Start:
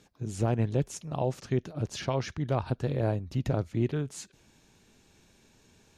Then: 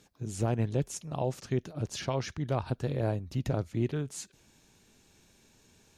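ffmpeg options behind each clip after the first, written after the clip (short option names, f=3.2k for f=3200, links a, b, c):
-af "highshelf=f=6k:g=6,volume=-2dB"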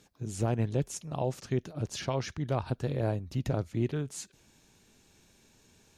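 -af anull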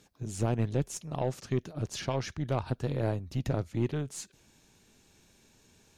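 -af "aeval=exprs='0.141*(cos(1*acos(clip(val(0)/0.141,-1,1)))-cos(1*PI/2))+0.00631*(cos(6*acos(clip(val(0)/0.141,-1,1)))-cos(6*PI/2))':c=same"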